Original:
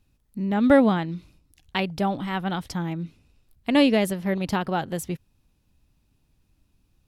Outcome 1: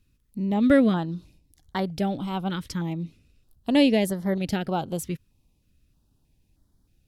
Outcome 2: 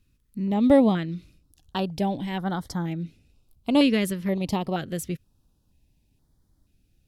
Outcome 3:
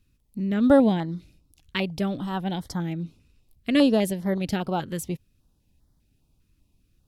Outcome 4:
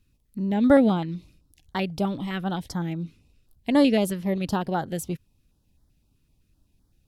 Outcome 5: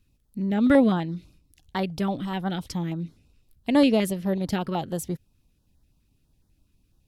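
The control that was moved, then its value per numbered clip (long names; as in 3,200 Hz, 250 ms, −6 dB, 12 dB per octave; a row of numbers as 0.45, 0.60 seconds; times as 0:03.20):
notch on a step sequencer, speed: 3.2, 2.1, 5, 7.8, 12 Hertz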